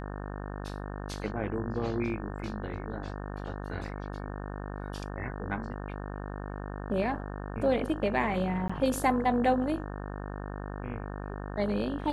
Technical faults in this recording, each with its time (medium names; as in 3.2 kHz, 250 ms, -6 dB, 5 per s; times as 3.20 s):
buzz 50 Hz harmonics 36 -38 dBFS
8.68–8.70 s: dropout 15 ms